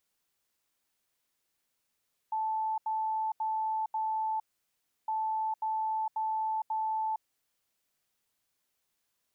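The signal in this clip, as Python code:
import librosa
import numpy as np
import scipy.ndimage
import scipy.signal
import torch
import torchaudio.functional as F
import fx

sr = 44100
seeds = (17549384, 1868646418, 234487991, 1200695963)

y = fx.beep_pattern(sr, wave='sine', hz=876.0, on_s=0.46, off_s=0.08, beeps=4, pause_s=0.68, groups=2, level_db=-28.5)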